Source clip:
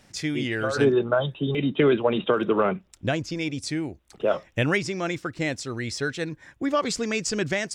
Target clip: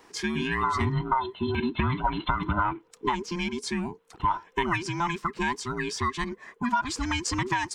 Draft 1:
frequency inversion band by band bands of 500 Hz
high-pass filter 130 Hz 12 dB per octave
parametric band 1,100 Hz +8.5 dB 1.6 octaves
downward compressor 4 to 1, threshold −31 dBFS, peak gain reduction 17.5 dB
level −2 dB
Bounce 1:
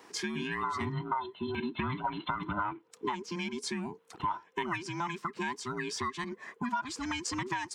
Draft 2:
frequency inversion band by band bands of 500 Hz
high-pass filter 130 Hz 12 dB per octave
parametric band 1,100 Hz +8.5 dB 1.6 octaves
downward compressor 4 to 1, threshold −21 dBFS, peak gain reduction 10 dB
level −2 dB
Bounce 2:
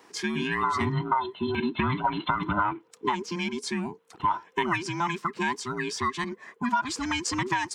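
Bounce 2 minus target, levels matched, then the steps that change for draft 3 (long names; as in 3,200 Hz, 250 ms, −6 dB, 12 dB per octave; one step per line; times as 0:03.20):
125 Hz band −2.5 dB
remove: high-pass filter 130 Hz 12 dB per octave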